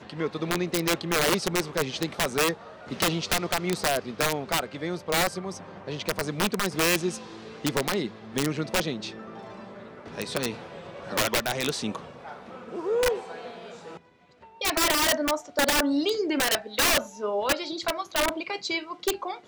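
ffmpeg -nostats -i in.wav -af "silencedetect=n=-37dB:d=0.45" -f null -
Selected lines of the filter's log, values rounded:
silence_start: 13.97
silence_end: 14.61 | silence_duration: 0.64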